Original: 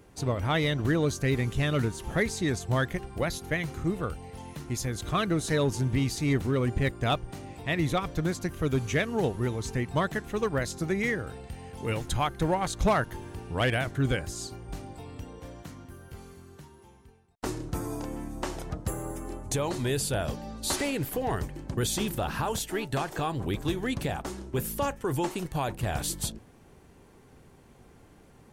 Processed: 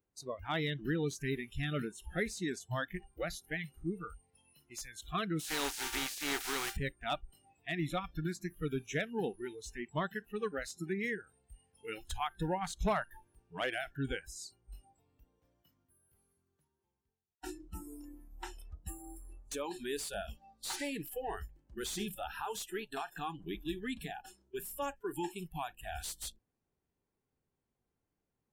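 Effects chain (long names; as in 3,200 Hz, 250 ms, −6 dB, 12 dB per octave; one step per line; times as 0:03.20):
0:05.39–0:06.75: compressing power law on the bin magnitudes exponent 0.35
noise reduction from a noise print of the clip's start 24 dB
slew-rate limiting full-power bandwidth 220 Hz
level −7.5 dB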